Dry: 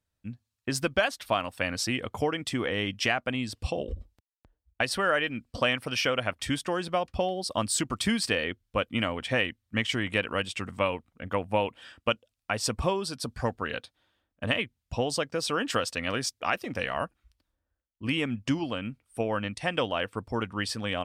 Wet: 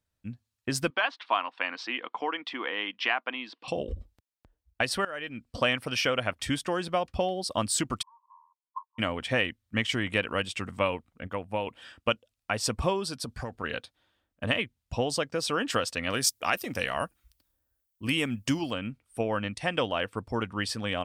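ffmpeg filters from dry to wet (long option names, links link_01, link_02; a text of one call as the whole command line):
ffmpeg -i in.wav -filter_complex "[0:a]asettb=1/sr,asplit=3[link_01][link_02][link_03];[link_01]atrim=end=0.904[link_04];[link_02]atrim=start=0.9:end=3.68,asetpts=PTS-STARTPTS,afade=type=in:duration=0.004:curve=qsin,afade=type=out:start_time=2.776:duration=0.004:curve=qsin,highpass=frequency=330:width=0.5412,highpass=frequency=330:width=1.3066,equalizer=frequency=410:width_type=q:width=4:gain=-8,equalizer=frequency=580:width_type=q:width=4:gain=-9,equalizer=frequency=1000:width_type=q:width=4:gain=7,lowpass=frequency=3900:width=0.5412,lowpass=frequency=3900:width=1.3066[link_05];[link_03]atrim=start=3.676[link_06];[link_04][link_05]acrossfade=duration=0.004:curve1=hsin:curve2=qsin[link_07];[link_07][link_06]acrossfade=duration=0.004:curve1=qsin:curve2=hsin,asplit=3[link_08][link_09][link_10];[link_08]afade=type=out:start_time=8.01:duration=0.02[link_11];[link_09]asuperpass=centerf=1000:order=8:qfactor=5.7,afade=type=in:start_time=8.01:duration=0.02,afade=type=out:start_time=8.98:duration=0.02[link_12];[link_10]afade=type=in:start_time=8.98:duration=0.02[link_13];[link_11][link_12][link_13]amix=inputs=3:normalize=0,asettb=1/sr,asplit=3[link_14][link_15][link_16];[link_14]atrim=end=13.224[link_17];[link_15]atrim=start=13.22:end=13.64,asetpts=PTS-STARTPTS,afade=type=in:duration=0.004:curve=qsin,afade=type=out:start_time=0.416:duration=0.004:curve=qsin,acompressor=threshold=-31dB:ratio=6:attack=3.2:release=140:knee=1:detection=peak[link_18];[link_16]atrim=start=13.636[link_19];[link_17][link_18]acrossfade=duration=0.004:curve1=hsin:curve2=qsin[link_20];[link_20][link_19]acrossfade=duration=0.004:curve1=qsin:curve2=hsin,asettb=1/sr,asplit=3[link_21][link_22][link_23];[link_21]atrim=end=16.124[link_24];[link_22]atrim=start=16.12:end=18.74,asetpts=PTS-STARTPTS,afade=type=in:duration=0.004:curve=qsin,afade=type=out:start_time=2.616:duration=0.004:curve=qsin,aemphasis=mode=production:type=50fm[link_25];[link_23]atrim=start=18.736[link_26];[link_24][link_25]acrossfade=duration=0.004:curve1=hsin:curve2=qsin[link_27];[link_27][link_26]acrossfade=duration=0.004:curve1=qsin:curve2=hsin,asplit=4[link_28][link_29][link_30][link_31];[link_28]atrim=end=5.05,asetpts=PTS-STARTPTS,afade=type=out:start_time=5.046:duration=0.004:curve=hsin:silence=0.112202[link_32];[link_29]atrim=start=5.05:end=11.272,asetpts=PTS-STARTPTS,afade=type=in:duration=0.57:silence=0.112202[link_33];[link_30]atrim=start=11.268:end=11.672,asetpts=PTS-STARTPTS,volume=-5dB[link_34];[link_31]atrim=start=11.668[link_35];[link_32][link_33]concat=n=2:v=0:a=1[link_36];[link_36][link_34]acrossfade=duration=0.004:curve1=hsin:curve2=hsin[link_37];[link_37][link_35]acrossfade=duration=0.004:curve1=hsin:curve2=hsin" out.wav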